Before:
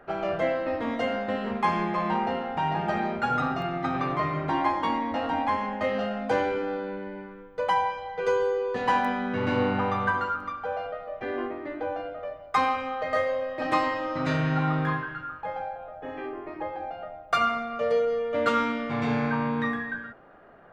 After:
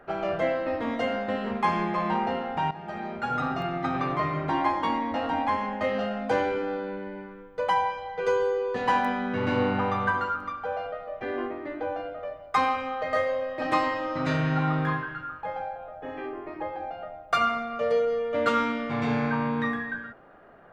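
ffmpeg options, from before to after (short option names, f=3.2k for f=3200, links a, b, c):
-filter_complex "[0:a]asplit=2[a][b];[a]atrim=end=2.71,asetpts=PTS-STARTPTS,afade=t=out:st=2.706:d=0.004:c=hsin:silence=0.177828[c];[b]atrim=start=2.71,asetpts=PTS-STARTPTS,afade=t=in:d=0.9:silence=0.177828[d];[c][d]concat=n=2:v=0:a=1"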